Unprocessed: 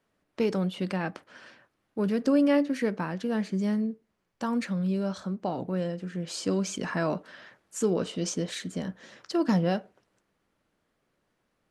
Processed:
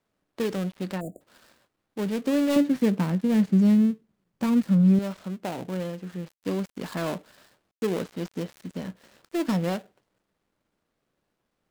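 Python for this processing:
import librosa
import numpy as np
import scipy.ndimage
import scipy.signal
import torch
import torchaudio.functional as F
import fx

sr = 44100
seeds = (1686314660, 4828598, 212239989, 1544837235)

y = fx.dead_time(x, sr, dead_ms=0.23)
y = fx.spec_erase(y, sr, start_s=1.0, length_s=0.21, low_hz=740.0, high_hz=6800.0)
y = fx.peak_eq(y, sr, hz=170.0, db=11.5, octaves=1.7, at=(2.56, 4.99))
y = y * librosa.db_to_amplitude(-1.0)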